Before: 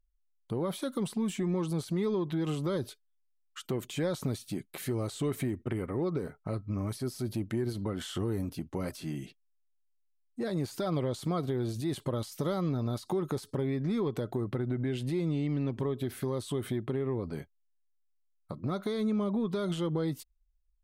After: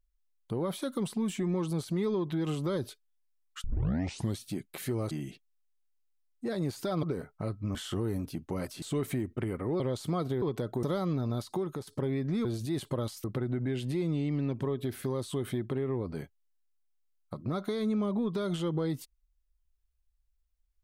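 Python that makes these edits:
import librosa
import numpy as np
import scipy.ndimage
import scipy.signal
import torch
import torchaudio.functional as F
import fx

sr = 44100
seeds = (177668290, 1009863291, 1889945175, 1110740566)

y = fx.edit(x, sr, fx.tape_start(start_s=3.64, length_s=0.75),
    fx.swap(start_s=5.11, length_s=0.98, other_s=9.06, other_length_s=1.92),
    fx.cut(start_s=6.81, length_s=1.18),
    fx.swap(start_s=11.6, length_s=0.79, other_s=14.01, other_length_s=0.41),
    fx.fade_out_to(start_s=13.04, length_s=0.39, floor_db=-7.5), tone=tone)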